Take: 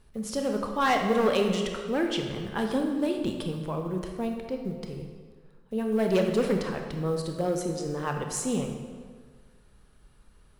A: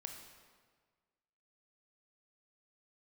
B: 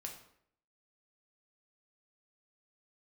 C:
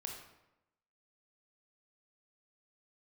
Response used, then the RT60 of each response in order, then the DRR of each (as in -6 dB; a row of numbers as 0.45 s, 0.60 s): A; 1.6 s, 0.65 s, 0.90 s; 3.0 dB, 1.0 dB, 1.0 dB